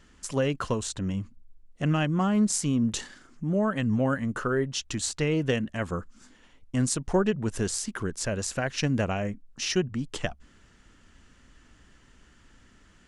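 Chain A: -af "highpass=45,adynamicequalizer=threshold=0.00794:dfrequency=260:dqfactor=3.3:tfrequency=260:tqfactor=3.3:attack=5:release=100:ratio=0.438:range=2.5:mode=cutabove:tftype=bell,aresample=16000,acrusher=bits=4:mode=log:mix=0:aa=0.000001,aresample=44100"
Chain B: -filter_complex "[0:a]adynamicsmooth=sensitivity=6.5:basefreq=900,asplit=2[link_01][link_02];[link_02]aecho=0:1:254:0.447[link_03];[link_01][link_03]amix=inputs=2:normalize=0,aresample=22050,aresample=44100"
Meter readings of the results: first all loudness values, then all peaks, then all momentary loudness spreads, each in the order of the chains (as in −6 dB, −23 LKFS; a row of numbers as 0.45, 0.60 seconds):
−29.0, −28.0 LKFS; −13.5, −11.0 dBFS; 8, 10 LU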